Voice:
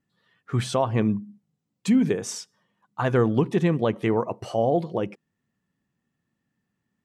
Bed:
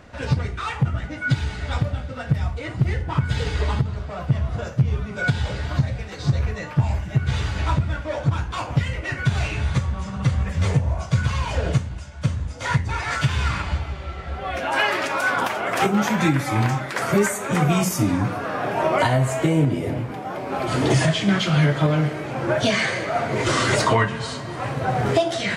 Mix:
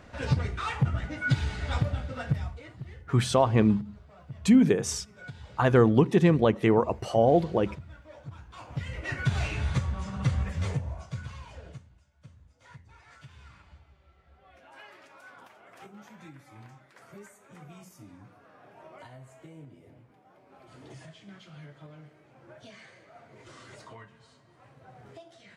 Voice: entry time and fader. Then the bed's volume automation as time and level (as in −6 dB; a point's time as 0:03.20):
2.60 s, +1.0 dB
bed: 0:02.24 −4.5 dB
0:02.87 −22 dB
0:08.42 −22 dB
0:09.10 −6 dB
0:10.39 −6 dB
0:12.10 −29.5 dB